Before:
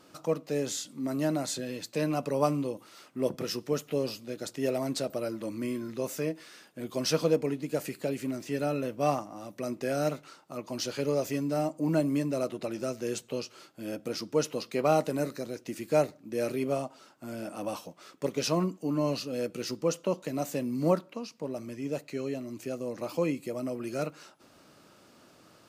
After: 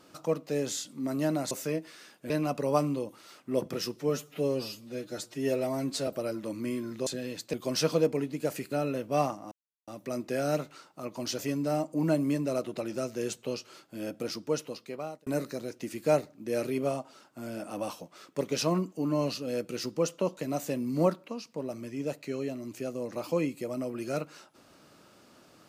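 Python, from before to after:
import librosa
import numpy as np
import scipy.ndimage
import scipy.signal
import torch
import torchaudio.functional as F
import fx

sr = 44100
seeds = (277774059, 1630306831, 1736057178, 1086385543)

y = fx.edit(x, sr, fx.swap(start_s=1.51, length_s=0.47, other_s=6.04, other_length_s=0.79),
    fx.stretch_span(start_s=3.64, length_s=1.41, factor=1.5),
    fx.cut(start_s=8.01, length_s=0.59),
    fx.insert_silence(at_s=9.4, length_s=0.36),
    fx.cut(start_s=10.91, length_s=0.33),
    fx.fade_out_span(start_s=14.09, length_s=1.03), tone=tone)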